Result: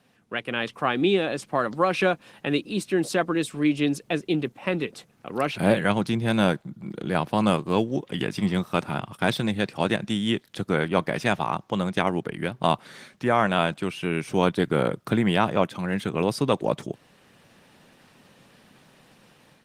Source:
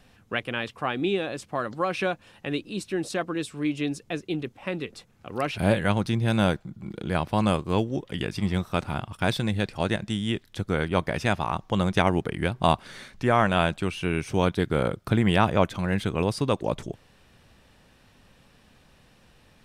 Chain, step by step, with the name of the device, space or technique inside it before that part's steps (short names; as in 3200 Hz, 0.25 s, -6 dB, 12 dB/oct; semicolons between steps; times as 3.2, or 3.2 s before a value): video call (HPF 130 Hz 24 dB/oct; AGC gain up to 9 dB; gain -3.5 dB; Opus 20 kbps 48000 Hz)